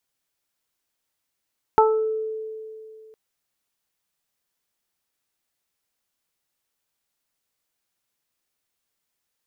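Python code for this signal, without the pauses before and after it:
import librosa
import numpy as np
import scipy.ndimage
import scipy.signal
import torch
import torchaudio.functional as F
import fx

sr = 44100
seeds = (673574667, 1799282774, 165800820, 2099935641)

y = fx.additive(sr, length_s=1.36, hz=438.0, level_db=-15.0, upper_db=(5.5, -4), decay_s=2.65, upper_decays_s=(0.31, 0.53))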